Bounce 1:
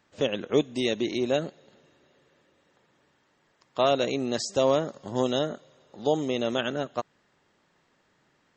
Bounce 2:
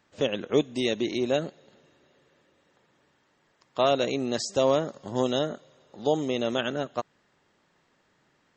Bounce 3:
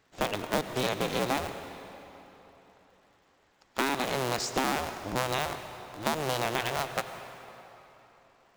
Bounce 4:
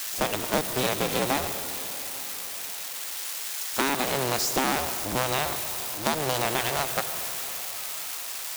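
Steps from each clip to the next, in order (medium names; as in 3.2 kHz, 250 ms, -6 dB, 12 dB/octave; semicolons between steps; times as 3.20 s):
no audible change
cycle switcher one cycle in 2, inverted; compression, threshold -25 dBFS, peak gain reduction 8.5 dB; on a send at -9 dB: reverberation RT60 3.5 s, pre-delay 84 ms
zero-crossing glitches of -26 dBFS; companded quantiser 4-bit; trim +2.5 dB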